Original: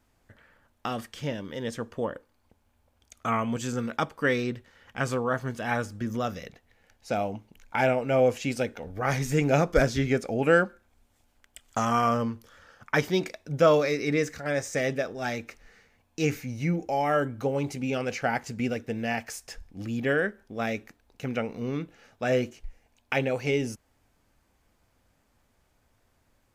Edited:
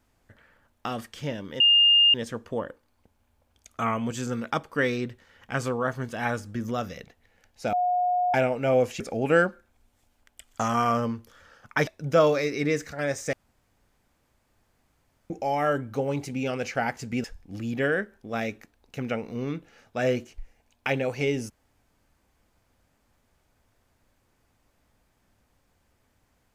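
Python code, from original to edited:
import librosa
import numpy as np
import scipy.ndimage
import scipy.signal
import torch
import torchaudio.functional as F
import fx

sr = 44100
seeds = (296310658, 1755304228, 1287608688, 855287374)

y = fx.edit(x, sr, fx.insert_tone(at_s=1.6, length_s=0.54, hz=2820.0, db=-14.5),
    fx.bleep(start_s=7.19, length_s=0.61, hz=720.0, db=-21.0),
    fx.cut(start_s=8.46, length_s=1.71),
    fx.cut(start_s=13.04, length_s=0.3),
    fx.room_tone_fill(start_s=14.8, length_s=1.97),
    fx.cut(start_s=18.71, length_s=0.79), tone=tone)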